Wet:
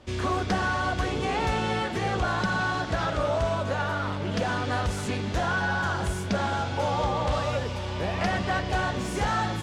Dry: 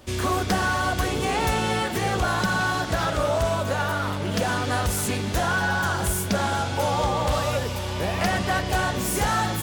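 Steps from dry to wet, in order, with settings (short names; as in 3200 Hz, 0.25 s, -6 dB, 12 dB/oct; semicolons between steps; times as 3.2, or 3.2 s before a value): air absorption 88 m; gain -2.5 dB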